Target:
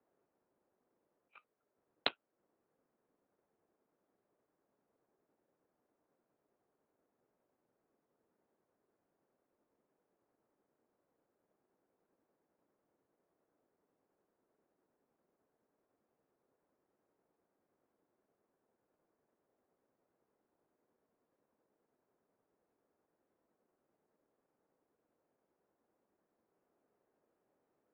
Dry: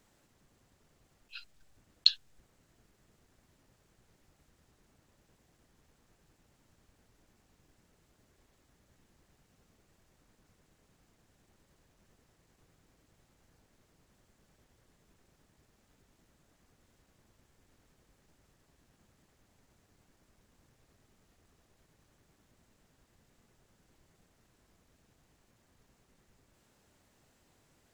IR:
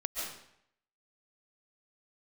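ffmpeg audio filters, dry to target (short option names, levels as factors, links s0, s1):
-af "aeval=exprs='0.596*(cos(1*acos(clip(val(0)/0.596,-1,1)))-cos(1*PI/2))+0.211*(cos(6*acos(clip(val(0)/0.596,-1,1)))-cos(6*PI/2))':c=same,adynamicsmooth=sensitivity=4:basefreq=740,highpass=f=530:t=q:w=0.5412,highpass=f=530:t=q:w=1.307,lowpass=f=3100:t=q:w=0.5176,lowpass=f=3100:t=q:w=0.7071,lowpass=f=3100:t=q:w=1.932,afreqshift=-180,volume=1.19"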